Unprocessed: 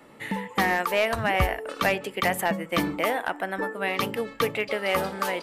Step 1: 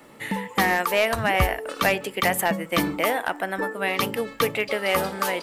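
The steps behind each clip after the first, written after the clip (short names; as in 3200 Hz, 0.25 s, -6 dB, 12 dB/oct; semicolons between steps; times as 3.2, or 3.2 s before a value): high shelf 5700 Hz +5.5 dB; crackle 500/s -53 dBFS; gain +2 dB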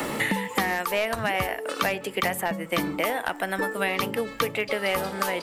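three-band squash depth 100%; gain -4 dB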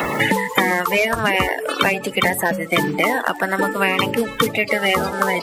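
bin magnitudes rounded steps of 30 dB; gain +8.5 dB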